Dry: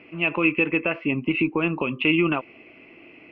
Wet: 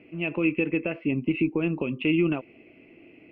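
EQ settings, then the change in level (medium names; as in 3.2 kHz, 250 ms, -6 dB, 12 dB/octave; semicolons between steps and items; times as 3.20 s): distance through air 74 m; peaking EQ 1.1 kHz -11.5 dB 1.2 oct; treble shelf 2.4 kHz -9 dB; 0.0 dB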